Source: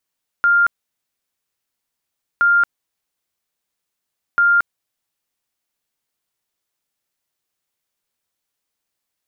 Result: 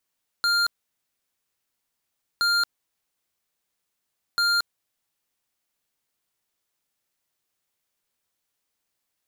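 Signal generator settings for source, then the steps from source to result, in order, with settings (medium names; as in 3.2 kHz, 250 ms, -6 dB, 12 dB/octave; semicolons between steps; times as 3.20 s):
tone bursts 1.4 kHz, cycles 317, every 1.97 s, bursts 3, -10.5 dBFS
wavefolder -16 dBFS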